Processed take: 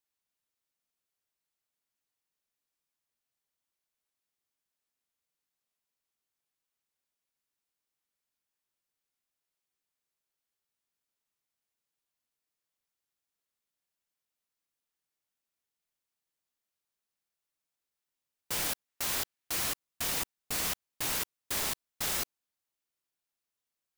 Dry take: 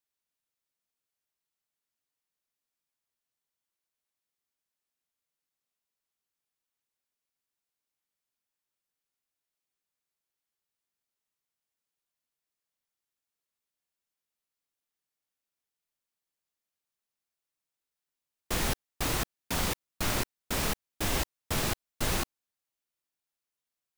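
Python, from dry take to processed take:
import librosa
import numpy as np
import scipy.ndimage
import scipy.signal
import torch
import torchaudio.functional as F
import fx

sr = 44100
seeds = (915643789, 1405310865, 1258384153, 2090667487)

y = fx.peak_eq(x, sr, hz=2100.0, db=4.0, octaves=1.8, at=(18.88, 19.69))
y = (np.mod(10.0 ** (27.0 / 20.0) * y + 1.0, 2.0) - 1.0) / 10.0 ** (27.0 / 20.0)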